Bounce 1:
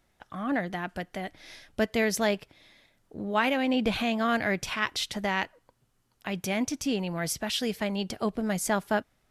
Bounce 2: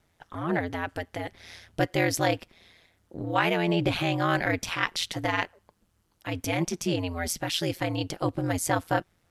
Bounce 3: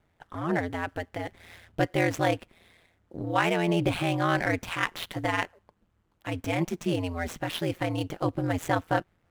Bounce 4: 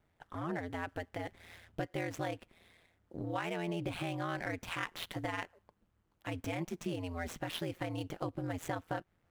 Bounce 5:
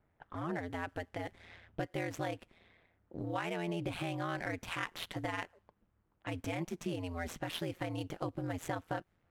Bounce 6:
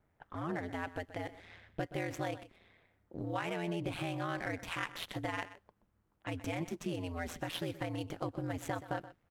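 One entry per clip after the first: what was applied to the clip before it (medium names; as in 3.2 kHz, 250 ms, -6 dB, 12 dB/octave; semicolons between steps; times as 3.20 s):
ring modulator 85 Hz; trim +4 dB
median filter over 9 samples
compression 4:1, threshold -29 dBFS, peak gain reduction 9.5 dB; trim -5 dB
level-controlled noise filter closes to 2 kHz, open at -38 dBFS
delay 126 ms -15 dB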